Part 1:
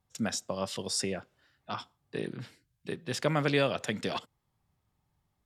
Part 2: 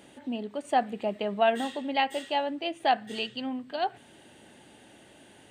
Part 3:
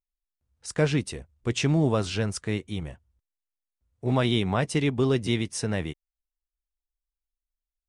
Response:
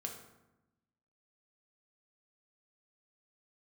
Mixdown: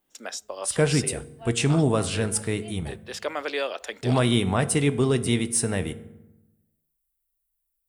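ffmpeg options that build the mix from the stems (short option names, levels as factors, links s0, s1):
-filter_complex "[0:a]highpass=f=360:w=0.5412,highpass=f=360:w=1.3066,volume=1,asplit=2[s0][s1];[1:a]aeval=exprs='val(0)*pow(10,-22*if(lt(mod(-3.3*n/s,1),2*abs(-3.3)/1000),1-mod(-3.3*n/s,1)/(2*abs(-3.3)/1000),(mod(-3.3*n/s,1)-2*abs(-3.3)/1000)/(1-2*abs(-3.3)/1000))/20)':c=same,volume=0.447[s2];[2:a]aexciter=amount=3.3:drive=9.1:freq=8300,volume=0.841,asplit=2[s3][s4];[s4]volume=0.631[s5];[s1]apad=whole_len=242845[s6];[s2][s6]sidechaincompress=threshold=0.00398:ratio=8:attack=16:release=485[s7];[3:a]atrim=start_sample=2205[s8];[s5][s8]afir=irnorm=-1:irlink=0[s9];[s0][s7][s3][s9]amix=inputs=4:normalize=0"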